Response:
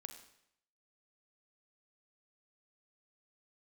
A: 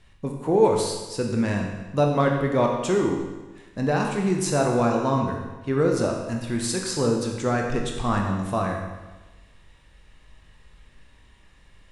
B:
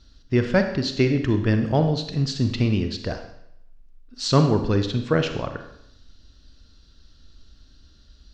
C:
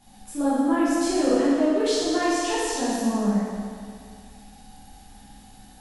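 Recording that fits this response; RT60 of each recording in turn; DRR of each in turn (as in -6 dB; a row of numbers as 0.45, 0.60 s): B; 1.2, 0.75, 2.1 s; 0.5, 6.5, -11.5 dB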